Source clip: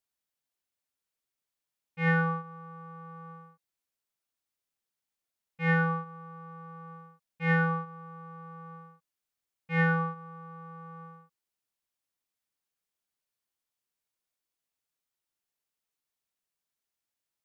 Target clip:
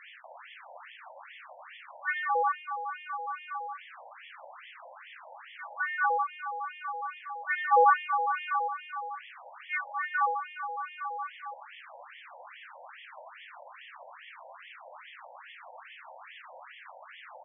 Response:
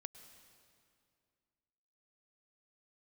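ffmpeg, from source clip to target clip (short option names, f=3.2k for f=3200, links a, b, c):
-filter_complex "[0:a]aeval=exprs='val(0)+0.5*0.02*sgn(val(0))':c=same,acompressor=mode=upward:threshold=-44dB:ratio=2.5,acrossover=split=1500[a][b];[a]adelay=240[c];[c][b]amix=inputs=2:normalize=0,asplit=3[d][e][f];[d]afade=t=out:st=7.71:d=0.02[g];[e]acontrast=86,afade=t=in:st=7.71:d=0.02,afade=t=out:st=8.67:d=0.02[h];[f]afade=t=in:st=8.67:d=0.02[i];[g][h][i]amix=inputs=3:normalize=0,bandreject=f=226.2:t=h:w=4,bandreject=f=452.4:t=h:w=4,bandreject=f=678.6:t=h:w=4,bandreject=f=904.8:t=h:w=4,bandreject=f=1.131k:t=h:w=4,bandreject=f=1.3572k:t=h:w=4,bandreject=f=1.5834k:t=h:w=4,bandreject=f=1.8096k:t=h:w=4,bandreject=f=2.0358k:t=h:w=4,bandreject=f=2.262k:t=h:w=4,bandreject=f=2.4882k:t=h:w=4,bandreject=f=2.7144k:t=h:w=4,bandreject=f=2.9406k:t=h:w=4,bandreject=f=3.1668k:t=h:w=4,bandreject=f=3.393k:t=h:w=4,bandreject=f=3.6192k:t=h:w=4,bandreject=f=3.8454k:t=h:w=4,bandreject=f=4.0716k:t=h:w=4,bandreject=f=4.2978k:t=h:w=4,bandreject=f=4.524k:t=h:w=4,bandreject=f=4.7502k:t=h:w=4,bandreject=f=4.9764k:t=h:w=4,bandreject=f=5.2026k:t=h:w=4,bandreject=f=5.4288k:t=h:w=4,bandreject=f=5.655k:t=h:w=4,bandreject=f=5.8812k:t=h:w=4,bandreject=f=6.1074k:t=h:w=4,asplit=2[j][k];[1:a]atrim=start_sample=2205,asetrate=66150,aresample=44100,lowpass=2.1k[l];[k][l]afir=irnorm=-1:irlink=0,volume=10dB[m];[j][m]amix=inputs=2:normalize=0,afftfilt=real='re*between(b*sr/1024,670*pow(2500/670,0.5+0.5*sin(2*PI*2.4*pts/sr))/1.41,670*pow(2500/670,0.5+0.5*sin(2*PI*2.4*pts/sr))*1.41)':imag='im*between(b*sr/1024,670*pow(2500/670,0.5+0.5*sin(2*PI*2.4*pts/sr))/1.41,670*pow(2500/670,0.5+0.5*sin(2*PI*2.4*pts/sr))*1.41)':win_size=1024:overlap=0.75,volume=4dB"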